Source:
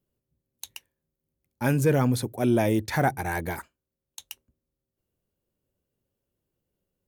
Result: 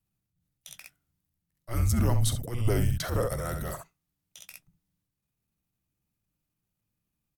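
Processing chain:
ambience of single reflections 47 ms −18 dB, 63 ms −10 dB
transient designer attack −10 dB, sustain +5 dB
frequency shifter −240 Hz
dynamic equaliser 1,800 Hz, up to −6 dB, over −43 dBFS, Q 0.75
wrong playback speed 25 fps video run at 24 fps
parametric band 290 Hz −4.5 dB 1.5 octaves

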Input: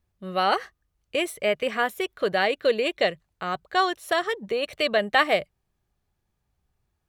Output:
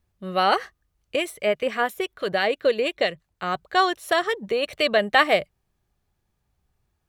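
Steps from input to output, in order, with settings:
0:01.16–0:03.43: two-band tremolo in antiphase 6 Hz, depth 50%, crossover 1,600 Hz
level +2.5 dB

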